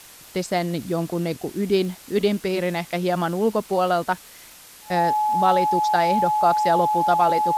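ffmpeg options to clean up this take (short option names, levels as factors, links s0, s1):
-af "adeclick=t=4,bandreject=f=850:w=30,afwtdn=0.0063"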